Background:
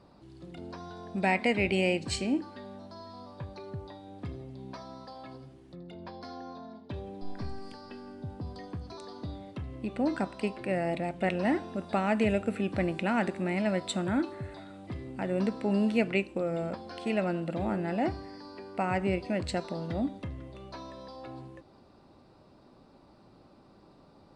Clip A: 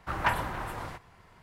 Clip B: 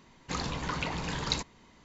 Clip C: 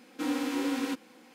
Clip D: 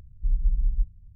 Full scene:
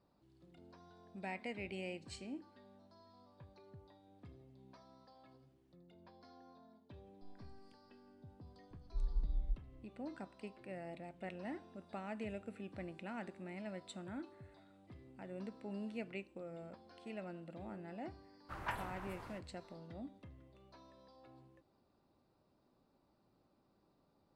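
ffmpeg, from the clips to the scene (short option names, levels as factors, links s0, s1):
-filter_complex "[0:a]volume=0.133[s0];[4:a]atrim=end=1.15,asetpts=PTS-STARTPTS,volume=0.211,afade=t=in:d=0.004:c=hsin,afade=t=out:st=1.146:d=0.004:c=hsin,adelay=8710[s1];[1:a]atrim=end=1.42,asetpts=PTS-STARTPTS,volume=0.2,afade=t=in:d=0.1,afade=t=out:st=1.32:d=0.1,adelay=18420[s2];[s0][s1][s2]amix=inputs=3:normalize=0"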